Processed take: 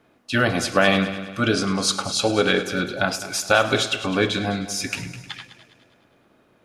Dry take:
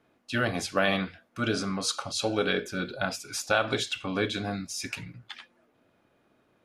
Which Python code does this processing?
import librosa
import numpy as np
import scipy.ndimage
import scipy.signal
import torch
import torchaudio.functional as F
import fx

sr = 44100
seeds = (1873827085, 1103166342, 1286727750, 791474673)

y = fx.echo_heads(x, sr, ms=103, heads='first and second', feedback_pct=49, wet_db=-16.0)
y = F.gain(torch.from_numpy(y), 7.5).numpy()